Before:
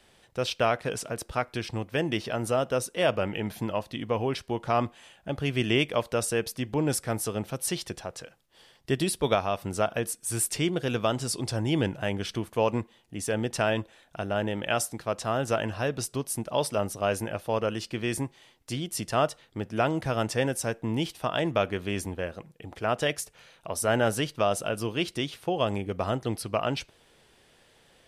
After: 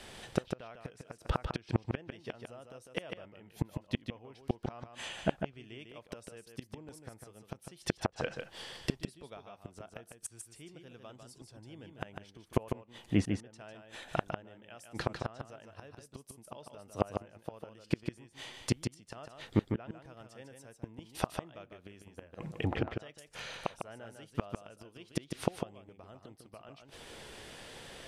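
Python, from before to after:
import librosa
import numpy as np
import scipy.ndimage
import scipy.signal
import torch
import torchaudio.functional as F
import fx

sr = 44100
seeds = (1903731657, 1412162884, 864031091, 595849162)

y = fx.gate_flip(x, sr, shuts_db=-24.0, range_db=-35)
y = fx.env_lowpass_down(y, sr, base_hz=2300.0, full_db=-39.5)
y = y + 10.0 ** (-6.0 / 20.0) * np.pad(y, (int(150 * sr / 1000.0), 0))[:len(y)]
y = F.gain(torch.from_numpy(y), 10.0).numpy()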